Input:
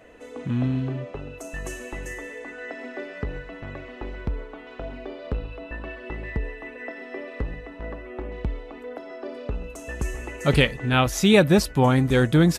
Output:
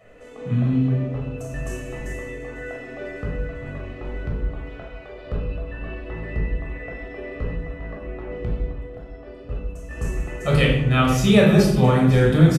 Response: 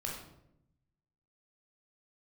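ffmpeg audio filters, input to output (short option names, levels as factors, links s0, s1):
-filter_complex "[0:a]asettb=1/sr,asplit=3[s0][s1][s2];[s0]atrim=end=4.704[s3];[s1]atrim=start=4.7:end=5.16,asetpts=PTS-STARTPTS,afade=t=in:d=0.004:c=qsin,afade=t=out:st=0.456:d=0.004:c=qsin,highpass=550[s4];[s2]atrim=start=5.156[s5];[s3][s4]acrossfade=d=0.004:c1=hsin:c2=qsin[s6];[s6][s5]acrossfade=d=0.004:c1=qsin:c2=hsin,asettb=1/sr,asplit=3[s7][s8][s9];[s7]atrim=end=8.674[s10];[s8]atrim=start=8.67:end=9.91,asetpts=PTS-STARTPTS,afade=t=in:d=0.004:c=qsin,afade=t=out:st=1.236:d=0.004:c=qsin,agate=range=0.447:threshold=0.0447:ratio=16:detection=peak[s11];[s9]atrim=start=9.906[s12];[s10][s11]acrossfade=d=0.004:c1=hsin:c2=qsin[s13];[s13][s12]acrossfade=d=0.004:c1=qsin:c2=hsin,aecho=1:1:498|996|1494|1992|2490|2988:0.158|0.0919|0.0533|0.0309|0.0179|0.0104[s14];[1:a]atrim=start_sample=2205[s15];[s14][s15]afir=irnorm=-1:irlink=0,volume=0.891"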